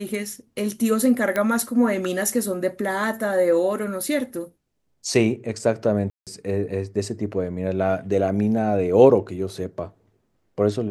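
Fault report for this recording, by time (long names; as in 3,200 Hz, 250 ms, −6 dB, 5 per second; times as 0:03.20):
0:01.36: click −11 dBFS
0:06.10–0:06.27: drop-out 167 ms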